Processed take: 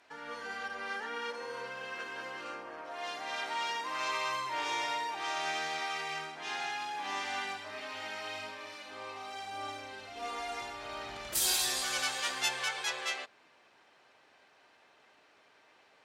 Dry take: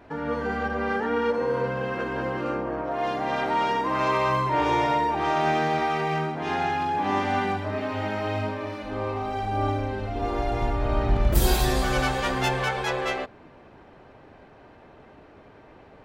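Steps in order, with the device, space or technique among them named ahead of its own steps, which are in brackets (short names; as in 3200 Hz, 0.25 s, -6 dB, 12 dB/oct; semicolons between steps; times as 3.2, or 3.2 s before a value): piezo pickup straight into a mixer (LPF 8500 Hz 12 dB/oct; differentiator); 10.17–10.61 comb 4.2 ms, depth 79%; gain +5.5 dB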